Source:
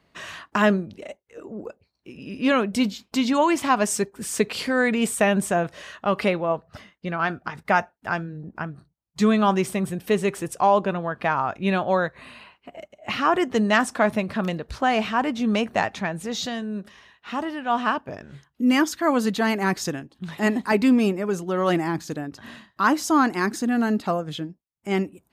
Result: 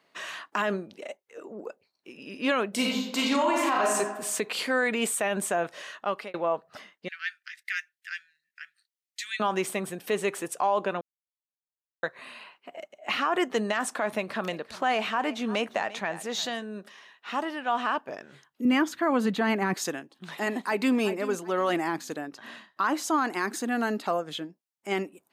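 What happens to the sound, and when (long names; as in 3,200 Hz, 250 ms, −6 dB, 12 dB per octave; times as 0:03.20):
0:02.69–0:03.93: thrown reverb, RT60 0.92 s, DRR −2 dB
0:05.72–0:06.34: fade out equal-power
0:07.08–0:09.40: elliptic high-pass filter 1,800 Hz, stop band 50 dB
0:11.01–0:12.03: silence
0:14.17–0:16.63: single-tap delay 346 ms −19.5 dB
0:18.65–0:19.74: bass and treble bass +12 dB, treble −9 dB
0:20.53–0:20.97: delay throw 380 ms, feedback 25%, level −15 dB
0:22.34–0:23.18: high-shelf EQ 7,100 Hz −5.5 dB
whole clip: dynamic equaliser 5,300 Hz, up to −5 dB, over −50 dBFS, Q 3.8; Bessel high-pass filter 410 Hz, order 2; brickwall limiter −16 dBFS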